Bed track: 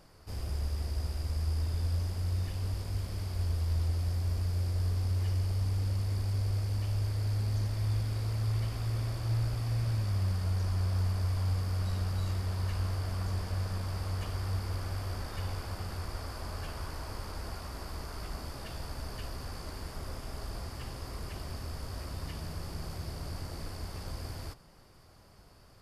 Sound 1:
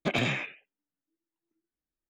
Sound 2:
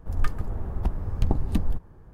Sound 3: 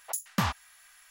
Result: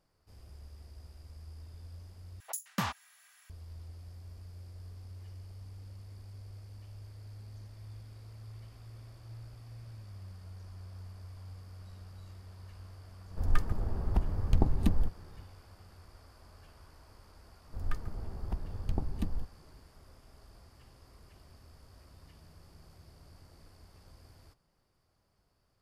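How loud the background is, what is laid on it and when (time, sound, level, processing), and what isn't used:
bed track -17 dB
2.40 s: replace with 3 -5 dB + high-pass 98 Hz
13.31 s: add 2 -2.5 dB
17.67 s: add 2 -9.5 dB
not used: 1

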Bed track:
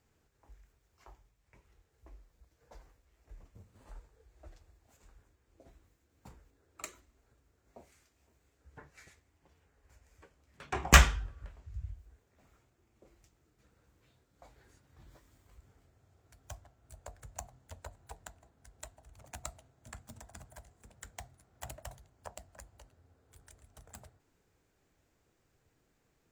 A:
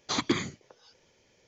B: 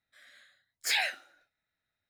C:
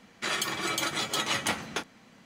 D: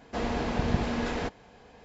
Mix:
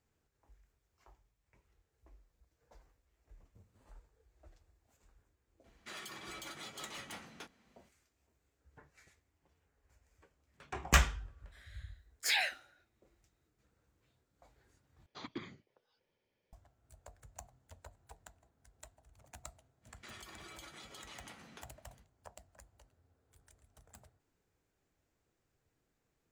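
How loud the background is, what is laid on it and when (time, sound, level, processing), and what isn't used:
bed track -7 dB
5.64 s: add C -14.5 dB + saturation -27 dBFS
11.39 s: add B -3 dB
15.06 s: replace with A -17 dB + peaking EQ 6.6 kHz -14.5 dB 0.79 oct
19.81 s: add C -15 dB, fades 0.05 s + compression 3:1, threshold -36 dBFS
not used: D

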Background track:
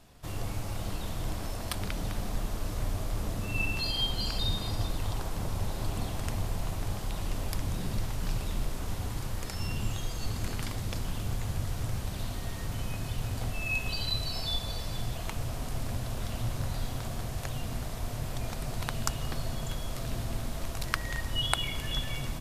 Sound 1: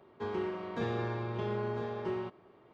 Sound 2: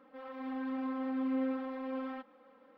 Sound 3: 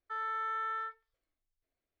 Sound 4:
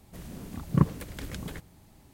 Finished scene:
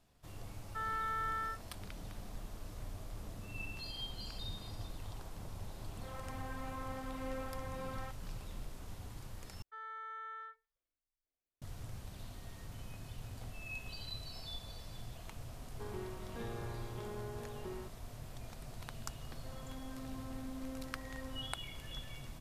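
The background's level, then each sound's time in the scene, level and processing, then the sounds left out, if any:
background track -13.5 dB
0.65 s: add 3 -2 dB
5.89 s: add 2 -1 dB + high-pass 560 Hz
9.62 s: replace with 3 -10.5 dB
15.59 s: add 1 -10.5 dB
19.30 s: add 2 -12 dB + three bands compressed up and down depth 40%
not used: 4

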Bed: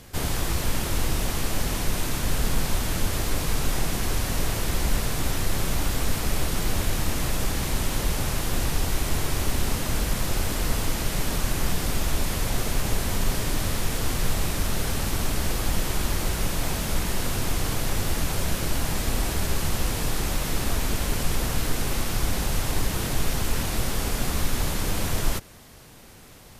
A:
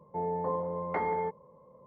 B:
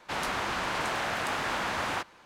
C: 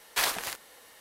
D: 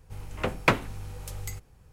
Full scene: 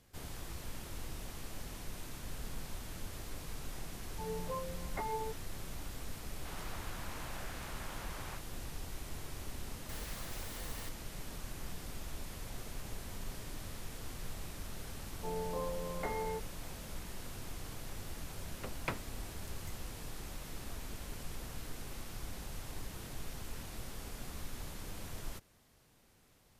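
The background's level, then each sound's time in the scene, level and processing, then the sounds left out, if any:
bed -19 dB
4.03 s: add A -5 dB + expander on every frequency bin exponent 3
6.36 s: add B -18 dB
9.89 s: add C -15 dB + one-bit comparator
15.09 s: add A -6 dB + peaking EQ 960 Hz -7 dB 0.27 oct
18.20 s: add D -17 dB

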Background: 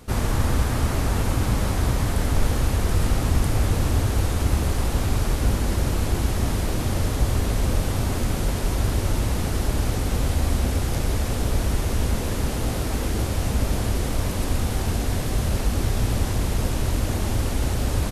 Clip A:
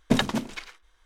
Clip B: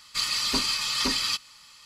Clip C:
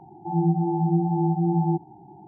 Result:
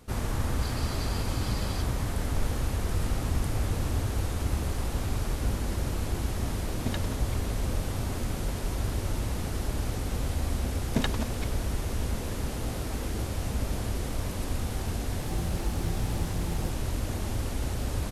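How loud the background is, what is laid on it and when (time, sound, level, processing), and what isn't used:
background -7.5 dB
0.46 s: add B -17 dB
6.75 s: add A -13.5 dB
10.85 s: add A -7 dB
14.94 s: add C -18 dB + send-on-delta sampling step -35 dBFS

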